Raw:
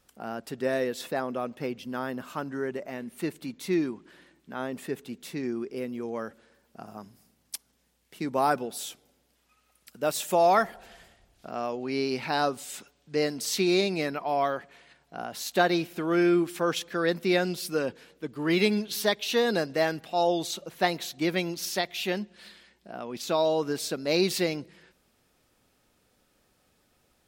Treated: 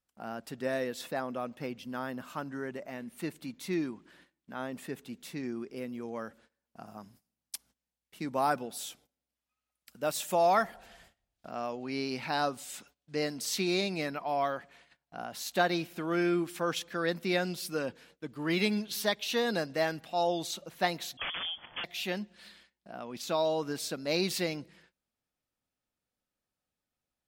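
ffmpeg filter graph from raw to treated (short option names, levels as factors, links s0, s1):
-filter_complex "[0:a]asettb=1/sr,asplit=3[s0][s1][s2];[s0]atrim=end=21.174[s3];[s1]atrim=start=21.17:end=21.84,asetpts=PTS-STARTPTS,afade=t=in:d=0.004:c=qsin,afade=t=out:st=0.666:d=0.004:c=qsin,asubboost=boost=6:cutoff=130,aeval=exprs='(mod(16.8*val(0)+1,2)-1)/16.8':c=same,lowpass=f=3000:t=q:w=0.5098,lowpass=f=3000:t=q:w=0.6013,lowpass=f=3000:t=q:w=0.9,lowpass=f=3000:t=q:w=2.563,afreqshift=-3500[s4];[s2]atrim=start=21.836[s5];[s3][s4]acrossfade=d=0.004:c1=hsin:c2=qsin[s6];[s6][s5]acrossfade=d=0.004:c1=qsin:c2=hsin,agate=range=0.126:threshold=0.00178:ratio=16:detection=peak,equalizer=f=400:t=o:w=0.5:g=-5,volume=0.668"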